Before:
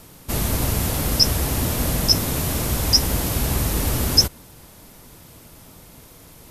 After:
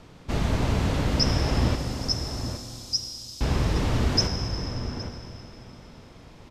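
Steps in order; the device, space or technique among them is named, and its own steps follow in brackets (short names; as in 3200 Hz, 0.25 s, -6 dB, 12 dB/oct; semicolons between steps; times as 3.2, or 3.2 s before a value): 1.75–3.41 inverse Chebyshev high-pass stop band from 1400 Hz, stop band 60 dB; shout across a valley (air absorption 150 m; outdoor echo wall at 140 m, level -8 dB); Schroeder reverb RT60 3.3 s, combs from 33 ms, DRR 6 dB; gain -1.5 dB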